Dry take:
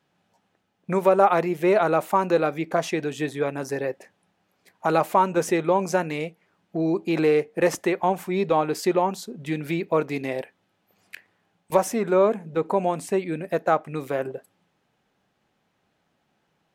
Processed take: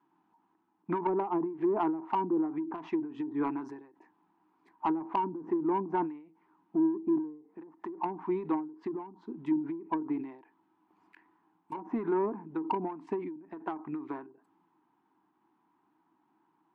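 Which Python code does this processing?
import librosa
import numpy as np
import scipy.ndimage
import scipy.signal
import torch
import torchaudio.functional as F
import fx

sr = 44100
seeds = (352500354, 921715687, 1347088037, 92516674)

p1 = fx.double_bandpass(x, sr, hz=550.0, octaves=1.6)
p2 = fx.env_lowpass_down(p1, sr, base_hz=460.0, full_db=-26.0)
p3 = fx.over_compress(p2, sr, threshold_db=-36.0, ratio=-1.0)
p4 = p2 + (p3 * librosa.db_to_amplitude(-2.0))
p5 = 10.0 ** (-21.5 / 20.0) * np.tanh(p4 / 10.0 ** (-21.5 / 20.0))
p6 = fx.end_taper(p5, sr, db_per_s=110.0)
y = p6 * librosa.db_to_amplitude(2.5)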